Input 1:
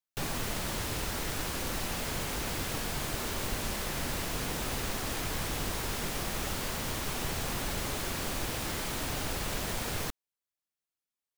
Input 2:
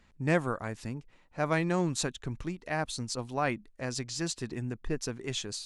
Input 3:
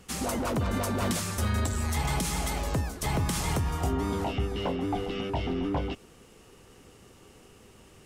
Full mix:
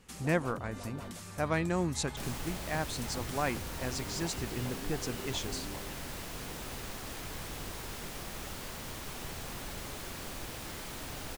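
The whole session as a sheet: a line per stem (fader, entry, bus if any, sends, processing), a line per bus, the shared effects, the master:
-7.5 dB, 2.00 s, no send, dry
-2.5 dB, 0.00 s, no send, dry
-8.0 dB, 0.00 s, no send, compressor 2:1, threshold -39 dBFS, peak gain reduction 8.5 dB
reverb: off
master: dry

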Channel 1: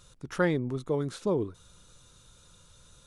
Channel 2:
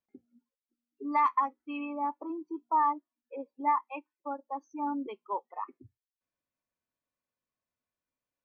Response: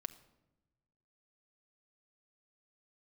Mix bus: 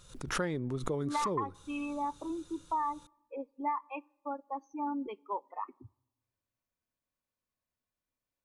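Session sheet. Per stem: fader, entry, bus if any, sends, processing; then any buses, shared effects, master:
-2.0 dB, 0.00 s, send -17.5 dB, backwards sustainer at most 120 dB/s
-2.5 dB, 0.00 s, send -12.5 dB, low shelf 94 Hz +11 dB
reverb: on, RT60 1.0 s, pre-delay 5 ms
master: compressor 4:1, threshold -30 dBFS, peak gain reduction 8 dB

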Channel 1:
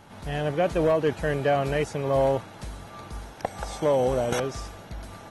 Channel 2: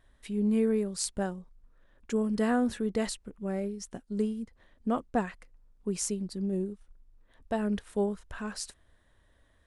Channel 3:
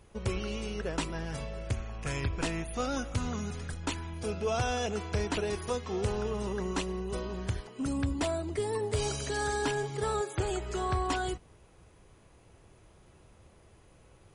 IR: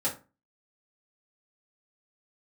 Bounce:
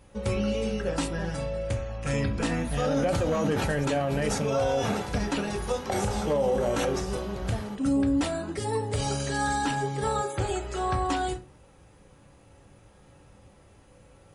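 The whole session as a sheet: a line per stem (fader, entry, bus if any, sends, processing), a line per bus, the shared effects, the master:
-3.5 dB, 2.45 s, send -10.5 dB, sustainer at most 54 dB/s
-7.5 dB, 0.00 s, no send, dry
-2.0 dB, 0.00 s, send -4 dB, dry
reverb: on, RT60 0.30 s, pre-delay 3 ms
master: limiter -17.5 dBFS, peak gain reduction 7.5 dB

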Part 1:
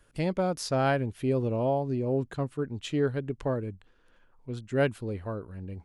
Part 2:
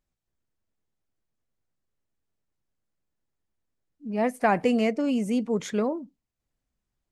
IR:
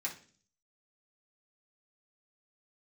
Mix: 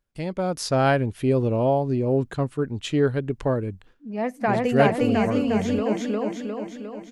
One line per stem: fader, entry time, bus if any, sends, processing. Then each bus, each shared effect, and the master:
-2.0 dB, 0.00 s, no send, no echo send, gate with hold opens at -50 dBFS
+1.5 dB, 0.00 s, no send, echo send -10.5 dB, bell 9800 Hz -9 dB 0.74 oct; auto duck -11 dB, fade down 0.30 s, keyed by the first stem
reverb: off
echo: feedback echo 0.355 s, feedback 57%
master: AGC gain up to 8 dB

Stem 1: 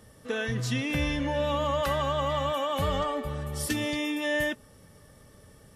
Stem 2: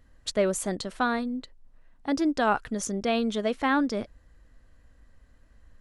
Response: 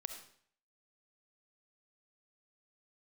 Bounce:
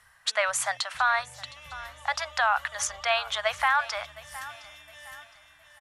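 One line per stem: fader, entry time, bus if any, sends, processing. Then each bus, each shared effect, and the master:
-2.5 dB, 0.00 s, no send, echo send -9.5 dB, passive tone stack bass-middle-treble 10-0-10; auto duck -12 dB, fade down 0.40 s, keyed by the second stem
+3.0 dB, 0.00 s, no send, echo send -20.5 dB, steep high-pass 690 Hz 48 dB/oct; bell 1600 Hz +10 dB 2.4 oct; limiter -12.5 dBFS, peak gain reduction 7 dB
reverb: off
echo: feedback echo 0.713 s, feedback 36%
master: limiter -13.5 dBFS, peak gain reduction 4 dB

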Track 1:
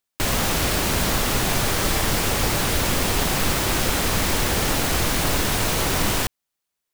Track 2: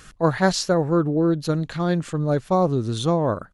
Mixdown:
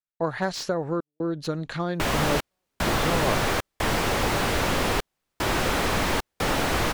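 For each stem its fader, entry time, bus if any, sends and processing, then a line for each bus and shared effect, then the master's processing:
+2.5 dB, 1.80 s, no send, dry
+3.0 dB, 0.00 s, no send, high shelf 6000 Hz -7.5 dB; compressor 5:1, threshold -24 dBFS, peak gain reduction 10 dB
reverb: off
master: step gate ".xxxx.xxxxxx." 75 bpm -60 dB; low shelf 280 Hz -7.5 dB; slew limiter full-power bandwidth 150 Hz

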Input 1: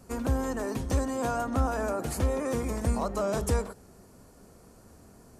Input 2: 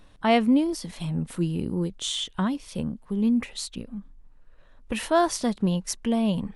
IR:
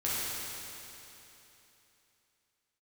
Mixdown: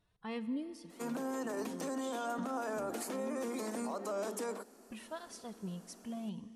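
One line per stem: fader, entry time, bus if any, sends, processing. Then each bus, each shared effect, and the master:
-3.0 dB, 0.90 s, no send, steep high-pass 210 Hz 72 dB/oct
-17.5 dB, 0.00 s, send -20.5 dB, tape flanging out of phase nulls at 0.36 Hz, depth 3.9 ms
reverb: on, RT60 3.2 s, pre-delay 9 ms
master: limiter -30 dBFS, peak gain reduction 9 dB

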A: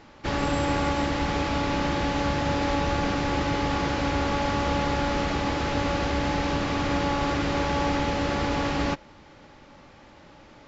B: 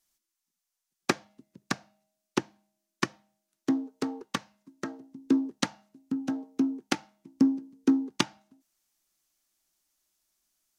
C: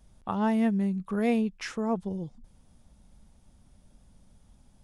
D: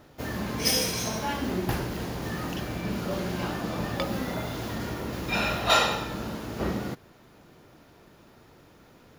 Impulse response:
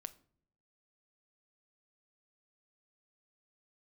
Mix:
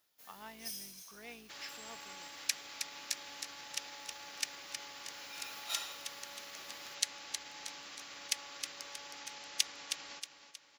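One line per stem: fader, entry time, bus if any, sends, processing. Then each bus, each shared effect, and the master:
-5.5 dB, 1.25 s, no send, echo send -10.5 dB, limiter -19 dBFS, peak gain reduction 6 dB
+2.0 dB, 1.40 s, send -9 dB, echo send -5 dB, Wiener smoothing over 15 samples; steep high-pass 1900 Hz
-4.5 dB, 0.00 s, no send, no echo send, octaver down 2 oct, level -3 dB; elliptic low-pass 5200 Hz; sample leveller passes 1
-12.5 dB, 0.00 s, send -8 dB, echo send -20.5 dB, auto duck -19 dB, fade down 1.50 s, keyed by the third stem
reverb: on, pre-delay 6 ms
echo: feedback echo 0.316 s, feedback 45%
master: differentiator

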